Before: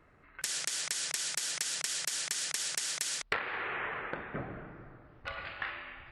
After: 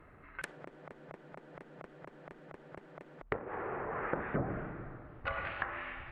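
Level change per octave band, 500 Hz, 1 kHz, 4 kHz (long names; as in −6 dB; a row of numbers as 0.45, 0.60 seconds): +4.5, +0.5, −22.5 decibels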